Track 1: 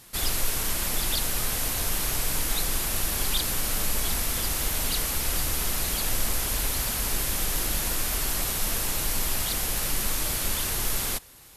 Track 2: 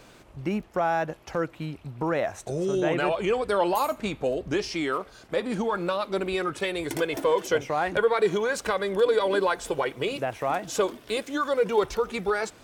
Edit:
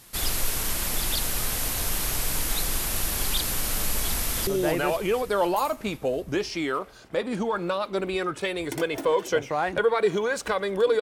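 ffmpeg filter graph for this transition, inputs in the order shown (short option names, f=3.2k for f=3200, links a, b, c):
-filter_complex "[0:a]apad=whole_dur=11.01,atrim=end=11.01,atrim=end=4.472[a];[1:a]atrim=start=2.658:end=9.2[b];[a][b]acrossfade=d=0.004:c1=hsin:c2=hsin,asplit=2[c][d];[d]afade=t=in:st=4.13:d=0.01,afade=t=out:st=4.47:d=0.01,aecho=0:1:250|500|750|1000|1250|1500|1750|2000|2250|2500:0.298538|0.208977|0.146284|0.102399|0.071679|0.0501753|0.0351227|0.0245859|0.0172101|0.0120471[e];[c][e]amix=inputs=2:normalize=0"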